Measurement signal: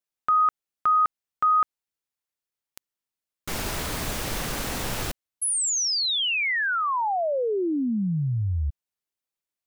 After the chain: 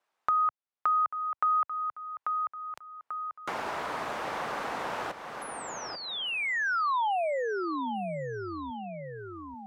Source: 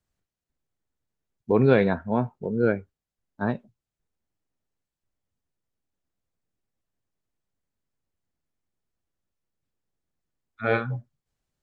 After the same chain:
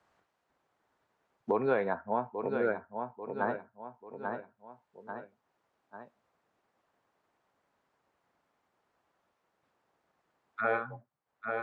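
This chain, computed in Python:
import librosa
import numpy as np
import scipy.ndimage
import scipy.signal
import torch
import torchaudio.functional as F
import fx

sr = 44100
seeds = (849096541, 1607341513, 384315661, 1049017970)

y = fx.bandpass_q(x, sr, hz=950.0, q=1.2)
y = fx.echo_feedback(y, sr, ms=840, feedback_pct=24, wet_db=-11.0)
y = fx.band_squash(y, sr, depth_pct=70)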